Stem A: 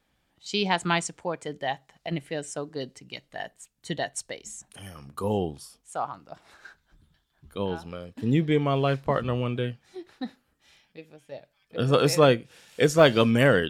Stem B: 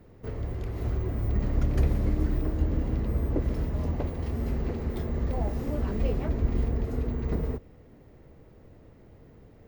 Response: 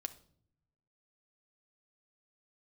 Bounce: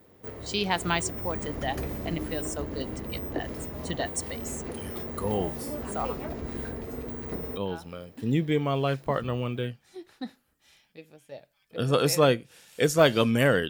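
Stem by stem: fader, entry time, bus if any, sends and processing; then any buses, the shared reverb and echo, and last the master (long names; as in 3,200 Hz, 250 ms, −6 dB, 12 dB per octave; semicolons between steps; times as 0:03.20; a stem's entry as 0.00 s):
−2.5 dB, 0.00 s, no send, no processing
0.0 dB, 0.00 s, no send, high-pass filter 300 Hz 6 dB per octave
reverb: not used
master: high-shelf EQ 9,600 Hz +12 dB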